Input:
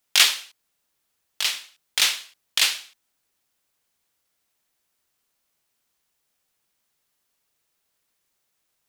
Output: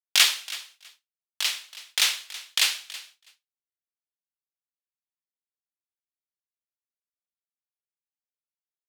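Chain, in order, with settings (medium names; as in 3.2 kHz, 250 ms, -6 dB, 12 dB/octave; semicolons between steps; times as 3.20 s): high-pass 430 Hz 6 dB/octave; feedback delay 325 ms, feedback 18%, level -17 dB; expander -46 dBFS; trim -2 dB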